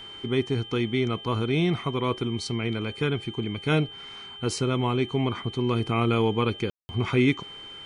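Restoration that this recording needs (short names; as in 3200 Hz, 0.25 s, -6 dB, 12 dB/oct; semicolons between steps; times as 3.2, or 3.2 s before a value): de-hum 405.8 Hz, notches 9; notch 3100 Hz, Q 30; room tone fill 6.7–6.89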